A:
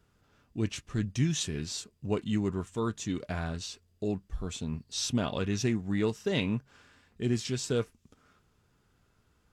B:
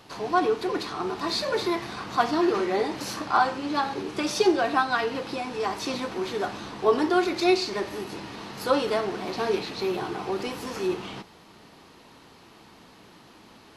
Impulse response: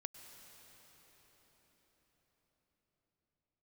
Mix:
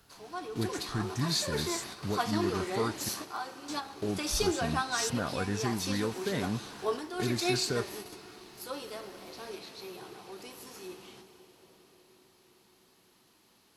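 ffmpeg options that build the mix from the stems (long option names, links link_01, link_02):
-filter_complex "[0:a]highshelf=frequency=2100:width_type=q:width=3:gain=-9,alimiter=limit=-23.5dB:level=0:latency=1:release=457,volume=1dB,asplit=3[link_01][link_02][link_03];[link_01]atrim=end=3.09,asetpts=PTS-STARTPTS,afade=type=out:start_time=3.086:duration=0.004:curve=hsin[link_04];[link_02]atrim=start=3.09:end=3.68,asetpts=PTS-STARTPTS,volume=0[link_05];[link_03]atrim=start=3.68,asetpts=PTS-STARTPTS,afade=type=in:duration=0.004:curve=hsin[link_06];[link_04][link_05][link_06]concat=n=3:v=0:a=1,asplit=2[link_07][link_08];[1:a]volume=-11.5dB,asplit=2[link_09][link_10];[link_10]volume=-4dB[link_11];[link_08]apad=whole_len=606877[link_12];[link_09][link_12]sidechaingate=range=-15dB:threshold=-56dB:ratio=16:detection=peak[link_13];[2:a]atrim=start_sample=2205[link_14];[link_11][link_14]afir=irnorm=-1:irlink=0[link_15];[link_07][link_13][link_15]amix=inputs=3:normalize=0,aemphasis=mode=production:type=75fm"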